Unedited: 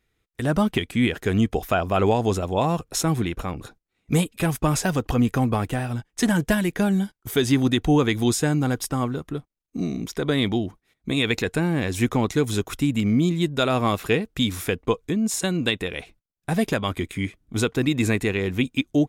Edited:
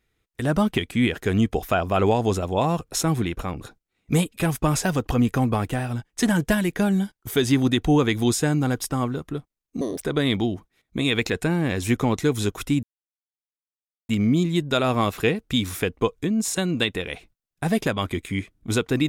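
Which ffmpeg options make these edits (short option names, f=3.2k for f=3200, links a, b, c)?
-filter_complex "[0:a]asplit=4[a][b][c][d];[a]atrim=end=9.814[e];[b]atrim=start=9.81:end=10.14,asetpts=PTS-STARTPTS,asetrate=69237,aresample=44100,atrim=end_sample=9269,asetpts=PTS-STARTPTS[f];[c]atrim=start=10.136:end=12.95,asetpts=PTS-STARTPTS,afade=t=out:st=2.81:d=0.004:c=hsin,apad=pad_dur=1.26[g];[d]atrim=start=12.95,asetpts=PTS-STARTPTS,afade=t=in:d=0.004:c=hsin[h];[e][f]acrossfade=d=0.004:c1=hsin:c2=hsin[i];[g][h]concat=n=2:v=0:a=1[j];[i][j]acrossfade=d=0.004:c1=hsin:c2=hsin"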